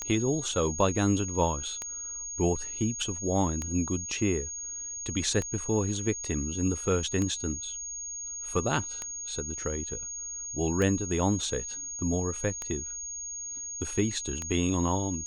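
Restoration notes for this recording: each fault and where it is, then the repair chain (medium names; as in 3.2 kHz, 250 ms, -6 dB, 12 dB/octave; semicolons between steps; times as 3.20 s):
tick 33 1/3 rpm -18 dBFS
whine 6.6 kHz -35 dBFS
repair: de-click; band-stop 6.6 kHz, Q 30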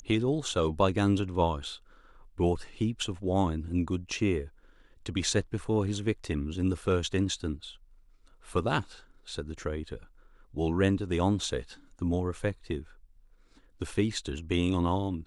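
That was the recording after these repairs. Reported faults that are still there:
nothing left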